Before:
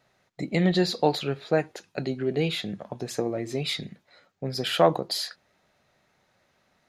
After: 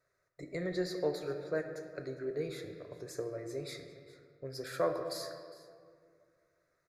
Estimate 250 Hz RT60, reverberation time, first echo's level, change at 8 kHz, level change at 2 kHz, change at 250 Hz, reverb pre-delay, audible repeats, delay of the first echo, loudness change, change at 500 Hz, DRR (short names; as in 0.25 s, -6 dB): 2.6 s, 2.1 s, -20.0 dB, -10.5 dB, -11.5 dB, -13.5 dB, 4 ms, 1, 0.407 s, -11.5 dB, -9.0 dB, 5.5 dB